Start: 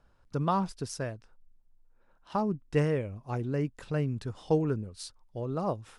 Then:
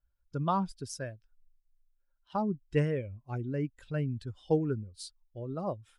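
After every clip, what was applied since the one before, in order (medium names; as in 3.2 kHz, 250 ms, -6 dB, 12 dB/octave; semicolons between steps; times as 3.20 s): expander on every frequency bin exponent 1.5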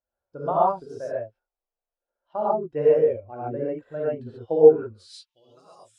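gated-style reverb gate 160 ms rising, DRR -8 dB; band-pass sweep 610 Hz -> 7.7 kHz, 4.73–5.64 s; trim +7 dB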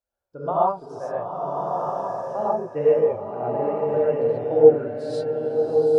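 swelling reverb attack 1300 ms, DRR 0.5 dB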